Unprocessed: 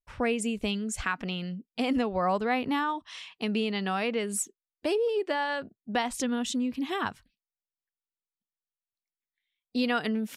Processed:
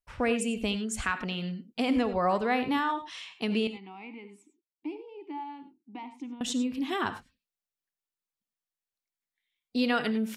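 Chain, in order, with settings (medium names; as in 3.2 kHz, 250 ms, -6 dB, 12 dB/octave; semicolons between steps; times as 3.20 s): 3.67–6.41 s: vowel filter u; reverberation, pre-delay 3 ms, DRR 10 dB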